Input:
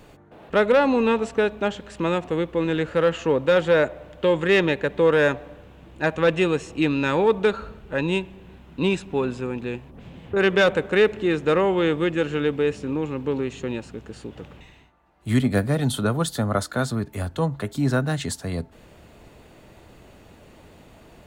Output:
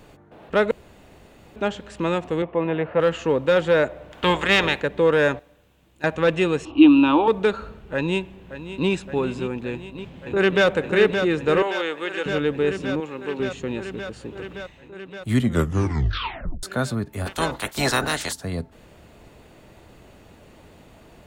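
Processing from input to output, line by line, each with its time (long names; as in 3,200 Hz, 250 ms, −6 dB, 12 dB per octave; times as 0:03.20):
0:00.71–0:01.56: fill with room tone
0:02.42–0:03.00: loudspeaker in its box 100–2,700 Hz, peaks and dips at 290 Hz −4 dB, 690 Hz +10 dB, 1,000 Hz +5 dB, 1,500 Hz −5 dB
0:04.11–0:04.81: ceiling on every frequency bin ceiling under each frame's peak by 18 dB
0:05.39–0:06.04: first-order pre-emphasis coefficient 0.8
0:06.65–0:07.28: drawn EQ curve 120 Hz 0 dB, 170 Hz −18 dB, 300 Hz +14 dB, 440 Hz −9 dB, 710 Hz +4 dB, 1,100 Hz +8 dB, 1,900 Hz −13 dB, 2,900 Hz +9 dB, 8,000 Hz −27 dB
0:07.93–0:08.90: delay throw 570 ms, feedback 80%, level −12 dB
0:09.69–0:10.67: delay throw 570 ms, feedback 80%, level −6.5 dB
0:11.62–0:12.26: Bessel high-pass filter 680 Hz
0:13.00–0:13.40: high-pass filter 490 Hz 6 dB per octave
0:15.37: tape stop 1.26 s
0:17.25–0:18.31: ceiling on every frequency bin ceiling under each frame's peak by 27 dB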